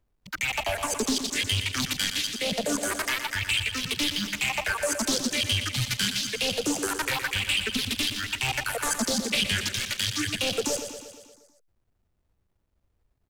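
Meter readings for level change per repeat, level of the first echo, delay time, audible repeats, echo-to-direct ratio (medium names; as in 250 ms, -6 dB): -4.5 dB, -9.0 dB, 118 ms, 6, -7.0 dB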